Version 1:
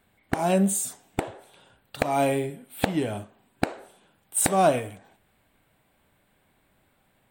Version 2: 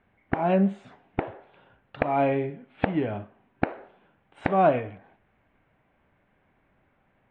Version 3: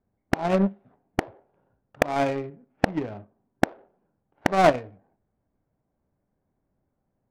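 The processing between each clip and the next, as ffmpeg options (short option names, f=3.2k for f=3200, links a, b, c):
-af "lowpass=f=2.5k:w=0.5412,lowpass=f=2.5k:w=1.3066"
-af "adynamicsmooth=sensitivity=4:basefreq=730,aeval=exprs='0.531*(cos(1*acos(clip(val(0)/0.531,-1,1)))-cos(1*PI/2))+0.0531*(cos(7*acos(clip(val(0)/0.531,-1,1)))-cos(7*PI/2))':c=same,volume=4dB"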